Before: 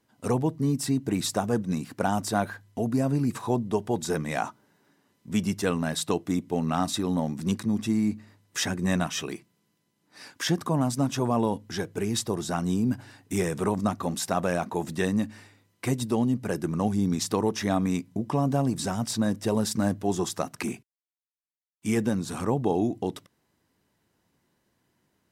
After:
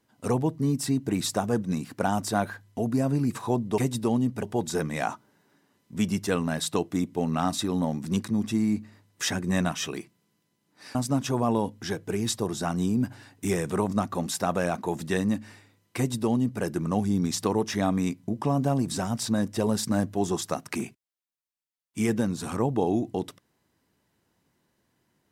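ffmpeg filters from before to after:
ffmpeg -i in.wav -filter_complex "[0:a]asplit=4[link_01][link_02][link_03][link_04];[link_01]atrim=end=3.782[link_05];[link_02]atrim=start=15.848:end=16.502[link_06];[link_03]atrim=start=3.778:end=10.302[link_07];[link_04]atrim=start=10.828[link_08];[link_05][link_06]acrossfade=duration=0.004:curve1=hsin:curve2=hsin[link_09];[link_09][link_07]acrossfade=duration=0.004:curve1=hsin:curve2=hsin[link_10];[link_10][link_08]acrossfade=duration=0.004:curve1=hsin:curve2=hsin" out.wav

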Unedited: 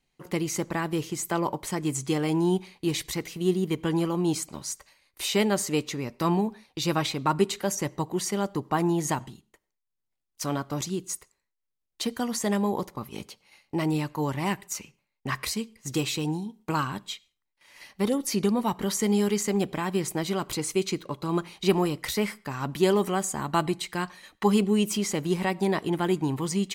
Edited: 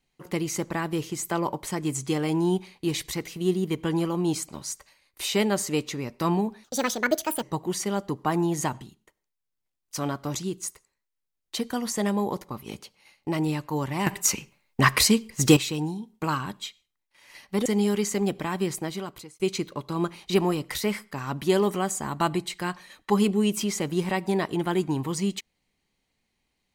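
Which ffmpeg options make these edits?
ffmpeg -i in.wav -filter_complex "[0:a]asplit=7[link_01][link_02][link_03][link_04][link_05][link_06][link_07];[link_01]atrim=end=6.644[link_08];[link_02]atrim=start=6.64:end=7.89,asetpts=PTS-STARTPTS,asetrate=70119,aresample=44100[link_09];[link_03]atrim=start=7.886:end=14.532[link_10];[link_04]atrim=start=14.528:end=16.032,asetpts=PTS-STARTPTS,volume=11dB[link_11];[link_05]atrim=start=16.028:end=18.122[link_12];[link_06]atrim=start=18.988:end=20.73,asetpts=PTS-STARTPTS,afade=type=out:start_time=1.022:duration=0.72[link_13];[link_07]atrim=start=20.73,asetpts=PTS-STARTPTS,afade=type=in:duration=0.004:curve=hsin[link_14];[link_08][link_09]acrossfade=duration=0.004:curve1=hsin:curve2=hsin[link_15];[link_15][link_10]acrossfade=duration=0.004:curve1=hsin:curve2=hsin[link_16];[link_16][link_11]acrossfade=duration=0.004:curve1=hsin:curve2=hsin[link_17];[link_17][link_12]acrossfade=duration=0.004:curve1=hsin:curve2=hsin[link_18];[link_13][link_14]concat=n=2:v=0:a=1[link_19];[link_18][link_19]acrossfade=duration=0.004:curve1=hsin:curve2=hsin" out.wav

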